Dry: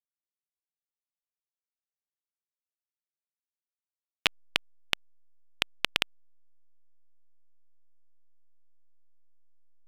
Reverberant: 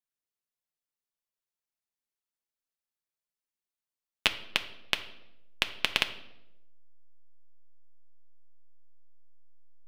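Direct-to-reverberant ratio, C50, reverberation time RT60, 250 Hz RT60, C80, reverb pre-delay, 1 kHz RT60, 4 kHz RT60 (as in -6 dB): 6.5 dB, 13.0 dB, 0.90 s, 1.1 s, 15.5 dB, 5 ms, 0.75 s, 0.65 s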